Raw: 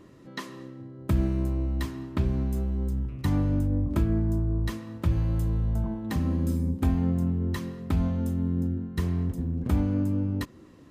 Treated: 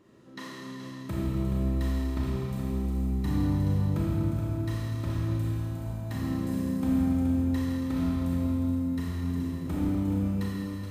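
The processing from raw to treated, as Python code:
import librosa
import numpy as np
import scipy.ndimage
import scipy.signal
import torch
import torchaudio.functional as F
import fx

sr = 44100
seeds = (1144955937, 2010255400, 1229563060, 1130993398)

p1 = fx.low_shelf(x, sr, hz=68.0, db=-10.5)
p2 = p1 + fx.echo_single(p1, sr, ms=424, db=-8.0, dry=0)
p3 = fx.rev_schroeder(p2, sr, rt60_s=2.8, comb_ms=27, drr_db=-6.0)
y = p3 * 10.0 ** (-8.0 / 20.0)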